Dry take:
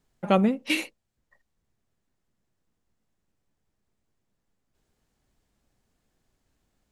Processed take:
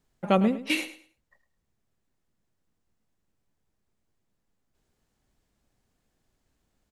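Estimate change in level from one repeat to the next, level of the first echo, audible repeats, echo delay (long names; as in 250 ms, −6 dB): −12.5 dB, −14.0 dB, 2, 106 ms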